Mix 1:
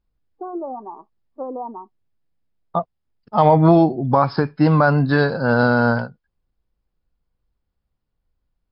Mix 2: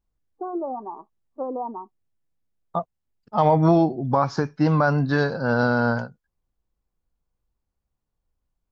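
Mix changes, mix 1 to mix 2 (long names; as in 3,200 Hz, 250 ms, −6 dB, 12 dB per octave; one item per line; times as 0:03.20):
second voice −4.5 dB
master: remove linear-phase brick-wall low-pass 5,300 Hz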